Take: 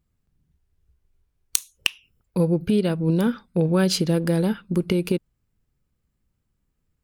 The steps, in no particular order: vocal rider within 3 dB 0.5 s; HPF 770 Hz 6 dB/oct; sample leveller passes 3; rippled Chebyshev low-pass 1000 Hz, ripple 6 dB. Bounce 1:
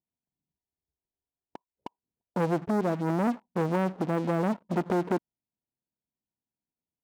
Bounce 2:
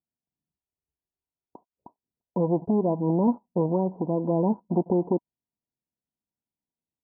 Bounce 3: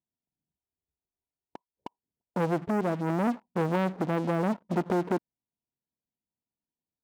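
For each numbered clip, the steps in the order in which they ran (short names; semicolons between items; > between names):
vocal rider > rippled Chebyshev low-pass > sample leveller > HPF; sample leveller > HPF > vocal rider > rippled Chebyshev low-pass; rippled Chebyshev low-pass > sample leveller > HPF > vocal rider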